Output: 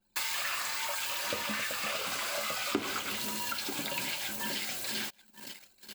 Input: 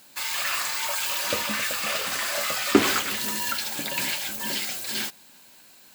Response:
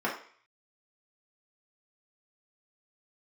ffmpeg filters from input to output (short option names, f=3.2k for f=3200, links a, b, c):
-filter_complex "[0:a]asettb=1/sr,asplit=3[a][b][c];[a]atrim=end=1.914[d];[b]atrim=start=1.91:end=4.19,asetpts=PTS-STARTPTS,afade=t=in:d=0.004:c=qsin,afade=t=out:st=2.276:d=0.004:c=qsin,bandreject=f=1.8k:w=7.2[e];[c]atrim=start=4.186[f];[d][e]acrossfade=d=0.004:c1=hsin:c2=qsin[g];[g][f]acrossfade=d=0.004:c1=qsin:c2=hsin,aecho=1:1:937:0.1,anlmdn=0.0398,acompressor=threshold=-38dB:ratio=4,adynamicequalizer=threshold=0.00251:dfrequency=4300:dqfactor=0.7:tfrequency=4300:tqfactor=0.7:attack=5:release=100:ratio=0.375:range=1.5:mode=cutabove:tftype=highshelf,volume=5.5dB"